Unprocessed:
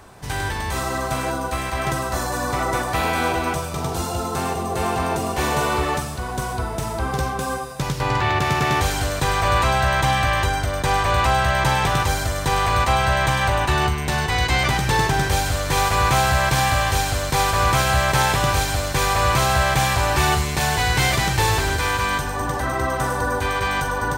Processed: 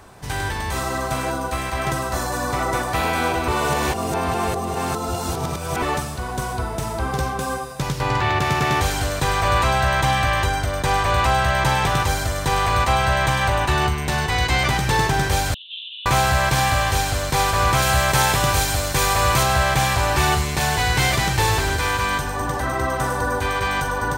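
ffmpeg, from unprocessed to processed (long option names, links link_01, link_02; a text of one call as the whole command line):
ffmpeg -i in.wav -filter_complex "[0:a]asettb=1/sr,asplit=3[link_01][link_02][link_03];[link_01]atrim=end=15.544[link_04];[link_02]atrim=start=15.54:end=16.06,asetpts=PTS-STARTPTS,afade=type=in:duration=0.004:curve=qsin,afade=type=out:start_time=0.516:duration=0.004:curve=qsin,asuperpass=centerf=3200:order=12:qfactor=3[link_05];[link_03]atrim=start=16.056[link_06];[link_04][link_05]acrossfade=duration=0.004:curve1=hsin:curve2=qsin[link_07];[link_07][link_06]acrossfade=duration=0.004:curve1=qsin:curve2=hsin,asettb=1/sr,asplit=3[link_08][link_09][link_10];[link_08]atrim=end=17.824[link_11];[link_09]atrim=start=17.82:end=19.43,asetpts=PTS-STARTPTS,afade=type=in:duration=0.004:curve=qsin,afade=type=out:start_time=1.606:duration=0.004:curve=qsin,highshelf=frequency=5900:gain=6[link_12];[link_10]atrim=start=19.426[link_13];[link_11][link_12]acrossfade=duration=0.004:curve1=hsin:curve2=qsin[link_14];[link_14][link_13]acrossfade=duration=0.004:curve1=qsin:curve2=hsin,asplit=3[link_15][link_16][link_17];[link_15]atrim=end=3.482[link_18];[link_16]atrim=start=3.478:end=5.822,asetpts=PTS-STARTPTS,areverse[link_19];[link_17]atrim=start=5.818[link_20];[link_18][link_19]acrossfade=duration=0.004:curve1=hsin:curve2=hsin[link_21];[link_21][link_20]acrossfade=duration=0.004:curve1=hsin:curve2=hsin" out.wav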